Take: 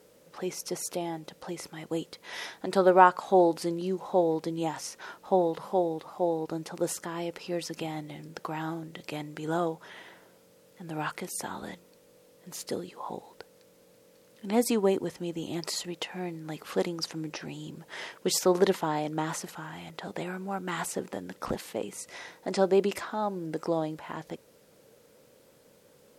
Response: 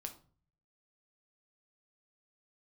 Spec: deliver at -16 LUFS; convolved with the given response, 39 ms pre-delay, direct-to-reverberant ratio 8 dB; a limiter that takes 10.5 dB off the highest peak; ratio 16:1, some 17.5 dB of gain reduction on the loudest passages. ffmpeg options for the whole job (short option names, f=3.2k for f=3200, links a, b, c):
-filter_complex "[0:a]acompressor=threshold=-30dB:ratio=16,alimiter=level_in=4dB:limit=-24dB:level=0:latency=1,volume=-4dB,asplit=2[a][b];[1:a]atrim=start_sample=2205,adelay=39[c];[b][c]afir=irnorm=-1:irlink=0,volume=-5dB[d];[a][d]amix=inputs=2:normalize=0,volume=22.5dB"